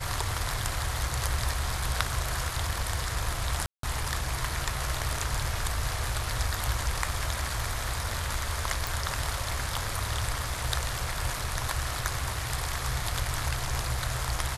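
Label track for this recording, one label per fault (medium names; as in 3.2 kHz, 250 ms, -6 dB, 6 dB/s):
3.660000	3.830000	dropout 173 ms
8.870000	8.870000	pop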